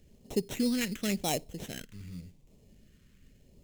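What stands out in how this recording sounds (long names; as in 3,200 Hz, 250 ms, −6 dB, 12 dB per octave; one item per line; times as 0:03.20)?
aliases and images of a low sample rate 4,700 Hz, jitter 0%
phaser sweep stages 2, 0.89 Hz, lowest notch 710–1,500 Hz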